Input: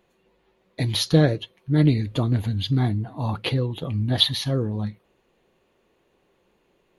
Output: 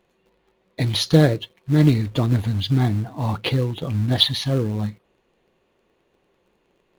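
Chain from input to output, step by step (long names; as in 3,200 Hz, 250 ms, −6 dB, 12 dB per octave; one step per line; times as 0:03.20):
high-shelf EQ 9,100 Hz −6.5 dB
in parallel at −9.5 dB: log-companded quantiser 4 bits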